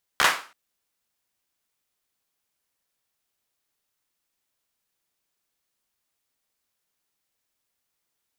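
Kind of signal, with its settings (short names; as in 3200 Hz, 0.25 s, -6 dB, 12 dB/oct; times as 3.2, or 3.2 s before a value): hand clap length 0.33 s, apart 14 ms, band 1300 Hz, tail 0.37 s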